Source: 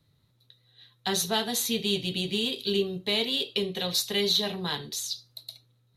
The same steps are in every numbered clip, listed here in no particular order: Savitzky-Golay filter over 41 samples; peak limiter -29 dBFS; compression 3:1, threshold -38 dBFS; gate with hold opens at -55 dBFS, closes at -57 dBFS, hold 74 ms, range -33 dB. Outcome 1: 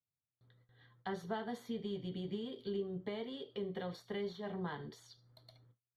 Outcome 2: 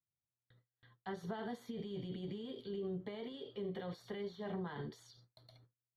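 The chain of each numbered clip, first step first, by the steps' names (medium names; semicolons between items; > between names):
gate with hold > compression > Savitzky-Golay filter > peak limiter; peak limiter > compression > Savitzky-Golay filter > gate with hold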